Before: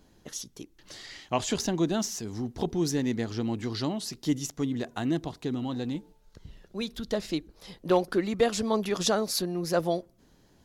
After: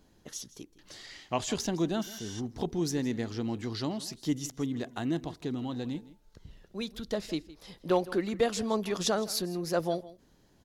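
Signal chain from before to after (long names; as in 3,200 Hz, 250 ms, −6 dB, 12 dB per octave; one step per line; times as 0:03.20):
single-tap delay 162 ms −18.5 dB
healed spectral selection 0:02.05–0:02.38, 1,400–11,000 Hz before
level −3 dB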